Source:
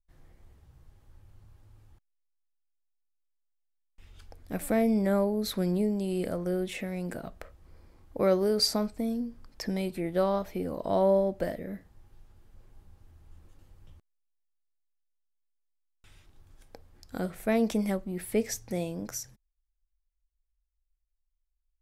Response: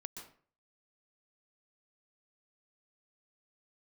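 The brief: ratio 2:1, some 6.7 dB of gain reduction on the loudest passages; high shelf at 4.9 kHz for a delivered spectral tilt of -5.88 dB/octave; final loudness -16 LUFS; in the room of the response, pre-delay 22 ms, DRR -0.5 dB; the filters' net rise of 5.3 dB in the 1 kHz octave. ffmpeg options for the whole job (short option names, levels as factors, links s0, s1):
-filter_complex "[0:a]equalizer=f=1000:t=o:g=7.5,highshelf=f=4900:g=-7,acompressor=threshold=0.0316:ratio=2,asplit=2[s0][s1];[1:a]atrim=start_sample=2205,adelay=22[s2];[s1][s2]afir=irnorm=-1:irlink=0,volume=1.58[s3];[s0][s3]amix=inputs=2:normalize=0,volume=4.47"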